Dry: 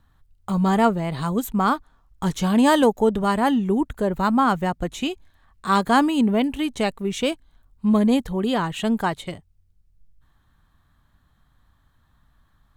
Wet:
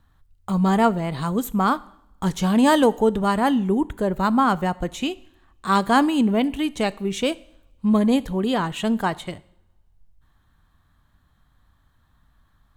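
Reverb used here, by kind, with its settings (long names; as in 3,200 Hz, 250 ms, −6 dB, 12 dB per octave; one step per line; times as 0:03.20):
coupled-rooms reverb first 0.65 s, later 2 s, from −24 dB, DRR 17.5 dB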